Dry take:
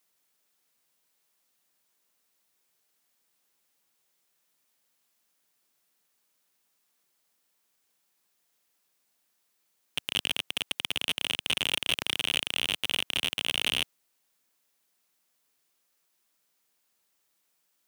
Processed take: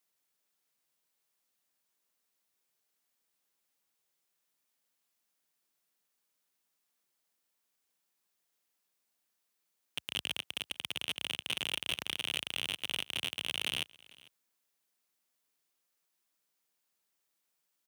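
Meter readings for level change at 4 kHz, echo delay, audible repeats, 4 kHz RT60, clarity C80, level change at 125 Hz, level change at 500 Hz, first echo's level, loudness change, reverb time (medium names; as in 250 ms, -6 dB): -7.0 dB, 448 ms, 1, no reverb, no reverb, -7.0 dB, -7.0 dB, -23.5 dB, -7.0 dB, no reverb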